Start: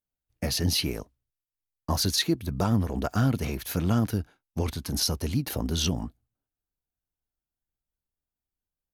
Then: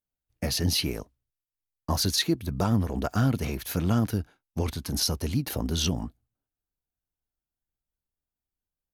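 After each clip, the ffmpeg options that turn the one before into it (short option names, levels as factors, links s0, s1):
-af anull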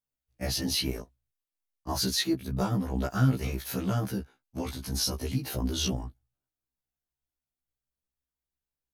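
-af "afftfilt=real='re*1.73*eq(mod(b,3),0)':imag='im*1.73*eq(mod(b,3),0)':win_size=2048:overlap=0.75"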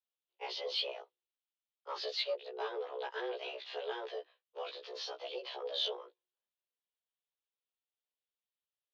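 -af "asoftclip=type=tanh:threshold=0.0944,highpass=f=180:t=q:w=0.5412,highpass=f=180:t=q:w=1.307,lowpass=f=3400:t=q:w=0.5176,lowpass=f=3400:t=q:w=0.7071,lowpass=f=3400:t=q:w=1.932,afreqshift=240,aexciter=amount=3.1:drive=7.1:freq=2800,volume=0.447"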